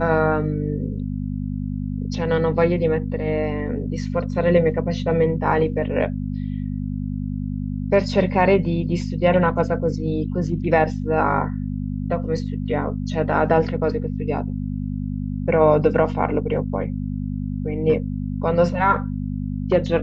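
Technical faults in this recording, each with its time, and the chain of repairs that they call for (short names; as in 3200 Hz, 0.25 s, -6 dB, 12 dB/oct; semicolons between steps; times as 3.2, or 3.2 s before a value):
hum 50 Hz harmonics 5 -26 dBFS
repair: de-hum 50 Hz, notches 5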